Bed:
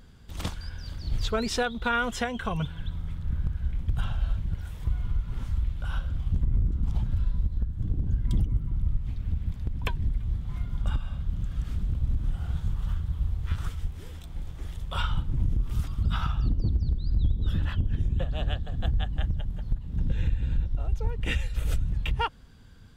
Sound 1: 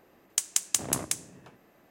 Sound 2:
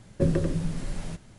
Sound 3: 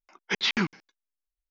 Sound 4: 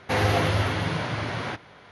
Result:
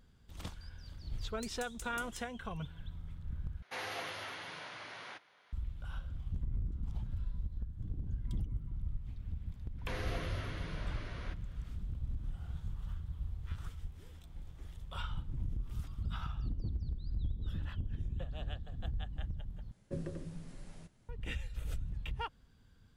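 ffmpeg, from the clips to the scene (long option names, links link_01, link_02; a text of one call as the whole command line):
ffmpeg -i bed.wav -i cue0.wav -i cue1.wav -i cue2.wav -i cue3.wav -filter_complex "[4:a]asplit=2[link_01][link_02];[0:a]volume=-12dB[link_03];[1:a]asoftclip=type=tanh:threshold=-19.5dB[link_04];[link_01]highpass=frequency=1200:poles=1[link_05];[link_02]equalizer=frequency=830:width=6.3:gain=-13[link_06];[link_03]asplit=3[link_07][link_08][link_09];[link_07]atrim=end=3.624[link_10];[link_05]atrim=end=1.91,asetpts=PTS-STARTPTS,volume=-12.5dB[link_11];[link_08]atrim=start=5.526:end=19.714[link_12];[2:a]atrim=end=1.38,asetpts=PTS-STARTPTS,volume=-16.5dB[link_13];[link_09]atrim=start=21.086[link_14];[link_04]atrim=end=1.9,asetpts=PTS-STARTPTS,volume=-18dB,afade=type=in:duration=0.004:curve=hsin,afade=type=out:start_time=1.896:duration=0.004:curve=hsin,adelay=1050[link_15];[link_06]atrim=end=1.91,asetpts=PTS-STARTPTS,volume=-17dB,afade=type=in:duration=0.004:curve=hsin,afade=type=out:start_time=1.906:duration=0.004:curve=hsin,adelay=431298S[link_16];[link_10][link_11]acrossfade=duration=0.004:curve1=hsin:curve2=hsin[link_17];[link_17][link_12]acrossfade=duration=0.004:curve1=hsin:curve2=hsin[link_18];[link_18][link_13]acrossfade=duration=0.004:curve1=hsin:curve2=hsin[link_19];[link_19][link_14]acrossfade=duration=0.004:curve1=hsin:curve2=hsin[link_20];[link_20][link_15][link_16]amix=inputs=3:normalize=0" out.wav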